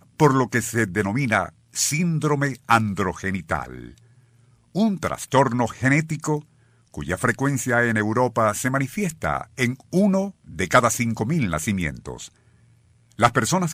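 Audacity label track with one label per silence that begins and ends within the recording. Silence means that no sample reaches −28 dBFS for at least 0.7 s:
3.880000	4.750000	silence
12.250000	13.190000	silence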